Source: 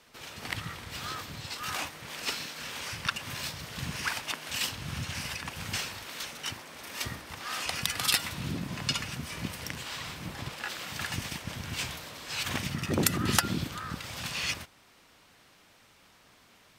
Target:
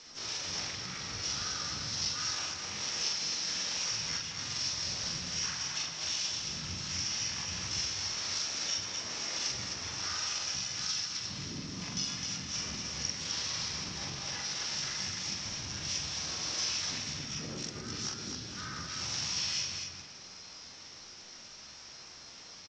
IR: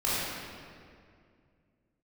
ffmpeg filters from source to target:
-filter_complex "[0:a]acompressor=threshold=-41dB:ratio=16,aresample=16000,asoftclip=type=tanh:threshold=-35dB,aresample=44100,aeval=exprs='val(0)+0.000355*sin(2*PI*4200*n/s)':channel_layout=same,asplit=2[link_01][link_02];[link_02]asetrate=52444,aresample=44100,atempo=0.840896,volume=-2dB[link_03];[link_01][link_03]amix=inputs=2:normalize=0,acrusher=bits=6:mode=log:mix=0:aa=0.000001,atempo=0.74,lowpass=frequency=5600:width_type=q:width=8.9,aecho=1:1:43.73|157.4|259.5:0.794|0.251|0.631,asplit=2[link_04][link_05];[1:a]atrim=start_sample=2205[link_06];[link_05][link_06]afir=irnorm=-1:irlink=0,volume=-18.5dB[link_07];[link_04][link_07]amix=inputs=2:normalize=0,volume=-2.5dB"

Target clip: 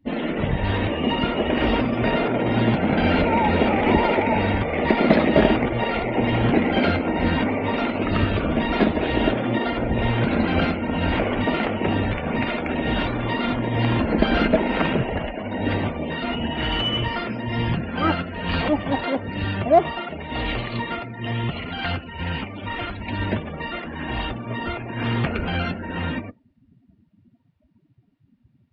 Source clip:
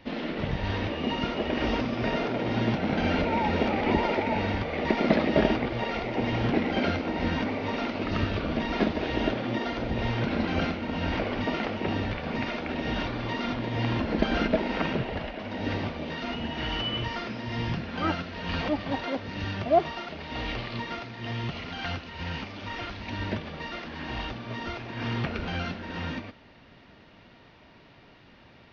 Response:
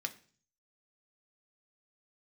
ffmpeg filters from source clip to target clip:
-filter_complex "[0:a]afftdn=noise_reduction=34:noise_floor=-41,asplit=2[link_01][link_02];[link_02]asoftclip=type=tanh:threshold=-22.5dB,volume=-10dB[link_03];[link_01][link_03]amix=inputs=2:normalize=0,volume=5dB"

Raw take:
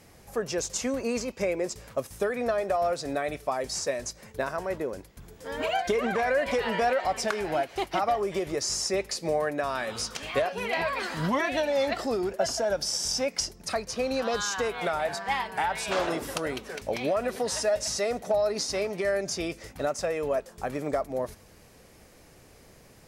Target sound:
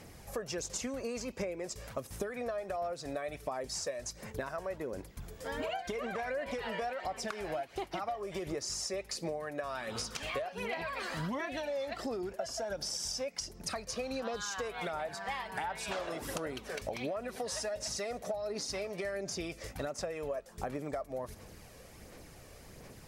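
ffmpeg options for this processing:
ffmpeg -i in.wav -af "aphaser=in_gain=1:out_gain=1:delay=1.8:decay=0.35:speed=1.4:type=sinusoidal,acompressor=threshold=-35dB:ratio=6" out.wav

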